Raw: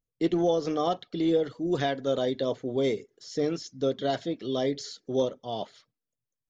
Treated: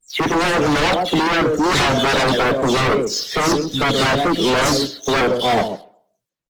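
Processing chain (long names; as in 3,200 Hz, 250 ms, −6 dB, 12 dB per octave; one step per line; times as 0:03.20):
every frequency bin delayed by itself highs early, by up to 202 ms
leveller curve on the samples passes 2
single-tap delay 130 ms −13 dB
pitch vibrato 2.4 Hz 74 cents
on a send at −20.5 dB: convolution reverb RT60 0.70 s, pre-delay 3 ms
on the sum: sine wavefolder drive 11 dB, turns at −12.5 dBFS
Opus 20 kbit/s 48,000 Hz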